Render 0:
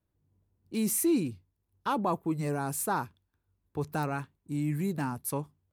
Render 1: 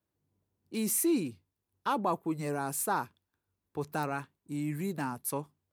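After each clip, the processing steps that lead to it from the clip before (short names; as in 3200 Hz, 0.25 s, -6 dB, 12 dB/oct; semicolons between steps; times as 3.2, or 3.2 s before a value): HPF 240 Hz 6 dB/oct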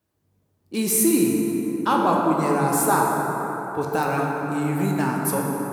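plate-style reverb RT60 4.8 s, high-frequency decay 0.35×, pre-delay 0 ms, DRR -2 dB; gain +8 dB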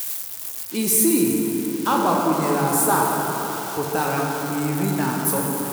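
switching spikes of -20.5 dBFS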